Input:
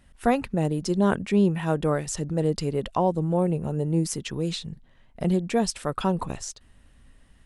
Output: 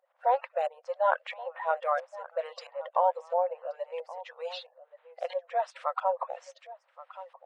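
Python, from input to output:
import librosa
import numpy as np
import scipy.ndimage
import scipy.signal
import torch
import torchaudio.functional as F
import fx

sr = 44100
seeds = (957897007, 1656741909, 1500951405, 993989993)

y = fx.spec_quant(x, sr, step_db=30)
y = y + 10.0 ** (-17.0 / 20.0) * np.pad(y, (int(1125 * sr / 1000.0), 0))[:len(y)]
y = fx.filter_lfo_lowpass(y, sr, shape='saw_up', hz=1.5, low_hz=780.0, high_hz=3100.0, q=0.87)
y = fx.brickwall_highpass(y, sr, low_hz=490.0)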